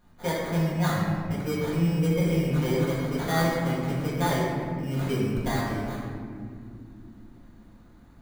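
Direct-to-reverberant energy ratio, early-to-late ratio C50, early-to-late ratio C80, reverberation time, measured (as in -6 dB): -9.0 dB, -1.0 dB, 1.0 dB, not exponential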